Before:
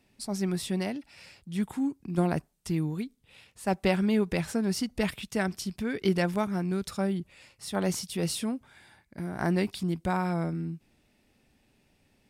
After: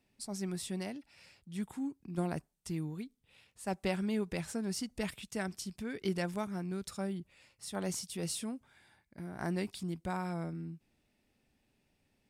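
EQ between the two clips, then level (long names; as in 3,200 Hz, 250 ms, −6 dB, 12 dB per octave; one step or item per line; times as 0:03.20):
dynamic equaliser 7,900 Hz, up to +6 dB, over −55 dBFS, Q 1.1
−8.5 dB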